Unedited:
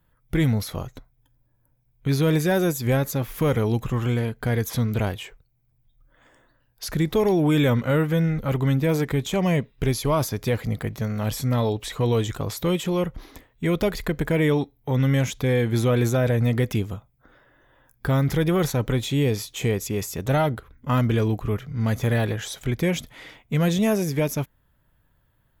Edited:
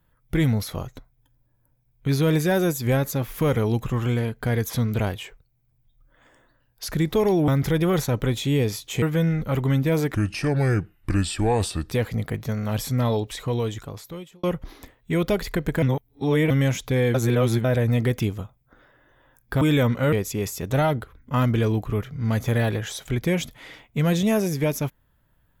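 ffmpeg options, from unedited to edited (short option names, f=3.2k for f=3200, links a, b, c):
-filter_complex "[0:a]asplit=12[a][b][c][d][e][f][g][h][i][j][k][l];[a]atrim=end=7.482[m];[b]atrim=start=18.138:end=19.682[n];[c]atrim=start=7.988:end=9.114[o];[d]atrim=start=9.11:end=10.44,asetpts=PTS-STARTPTS,asetrate=33075,aresample=44100[p];[e]atrim=start=10.436:end=12.96,asetpts=PTS-STARTPTS,afade=t=out:st=1.244:d=1.28[q];[f]atrim=start=12.96:end=14.352,asetpts=PTS-STARTPTS,afade=t=in:d=0.004:c=hsin[r];[g]atrim=start=14.348:end=15.032,asetpts=PTS-STARTPTS,areverse[s];[h]atrim=start=15.028:end=15.672[t];[i]atrim=start=15.668:end=16.172,asetpts=PTS-STARTPTS,areverse[u];[j]atrim=start=16.168:end=18.142[v];[k]atrim=start=7.478:end=7.992[w];[l]atrim=start=19.678[x];[m][n]acrossfade=d=0.004:c1=hsin:c2=hsin[y];[y][o]acrossfade=d=0.004:c1=hsin:c2=hsin[z];[z][p]acrossfade=d=0.004:c1=hsin:c2=hsin[aa];[q][r]concat=n=2:v=0:a=1[ab];[aa][ab]acrossfade=d=0.004:c1=hsin:c2=hsin[ac];[ac][s]acrossfade=d=0.004:c1=hsin:c2=hsin[ad];[ad][t]acrossfade=d=0.004:c1=hsin:c2=hsin[ae];[ae][u]acrossfade=d=0.004:c1=hsin:c2=hsin[af];[af][v]acrossfade=d=0.004:c1=hsin:c2=hsin[ag];[ag][w]acrossfade=d=0.004:c1=hsin:c2=hsin[ah];[ah][x]acrossfade=d=0.004:c1=hsin:c2=hsin"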